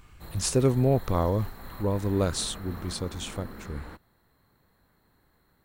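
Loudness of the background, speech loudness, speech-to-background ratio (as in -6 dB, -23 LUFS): -44.0 LUFS, -28.0 LUFS, 16.0 dB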